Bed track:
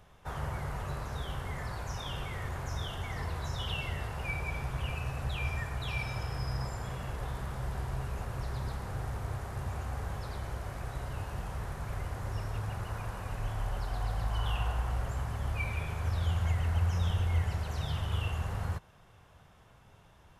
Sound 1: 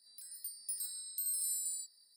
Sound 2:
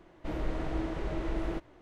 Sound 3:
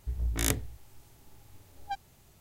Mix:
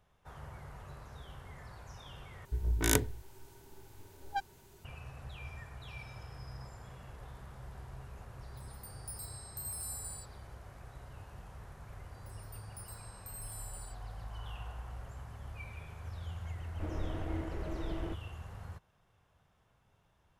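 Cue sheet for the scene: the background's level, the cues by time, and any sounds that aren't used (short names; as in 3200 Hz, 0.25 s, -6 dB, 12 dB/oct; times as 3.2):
bed track -12 dB
2.45 replace with 3 -0.5 dB + small resonant body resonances 390/940/1500 Hz, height 11 dB
8.39 add 1 -12 dB + AGC gain up to 6.5 dB
12.08 add 1 -11.5 dB
16.55 add 2 -5.5 dB + Wiener smoothing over 9 samples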